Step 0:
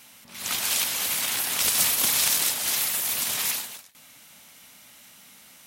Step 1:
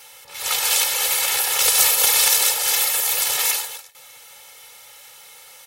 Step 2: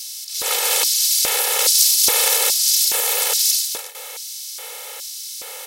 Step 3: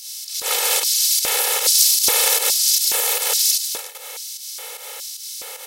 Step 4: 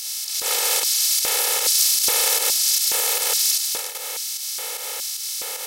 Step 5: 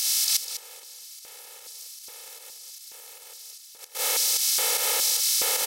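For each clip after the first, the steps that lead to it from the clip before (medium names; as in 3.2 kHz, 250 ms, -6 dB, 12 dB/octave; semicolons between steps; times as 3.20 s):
resonant low shelf 410 Hz -6.5 dB, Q 3; comb 2.3 ms, depth 90%; trim +3.5 dB
spectral levelling over time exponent 0.6; LFO high-pass square 1.2 Hz 450–4900 Hz; trim -3 dB
volume shaper 151 bpm, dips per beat 1, -9 dB, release 132 ms
spectral levelling over time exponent 0.6; trim -5 dB
inverted gate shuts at -14 dBFS, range -29 dB; on a send: delay 201 ms -11 dB; on the sum: trim +4.5 dB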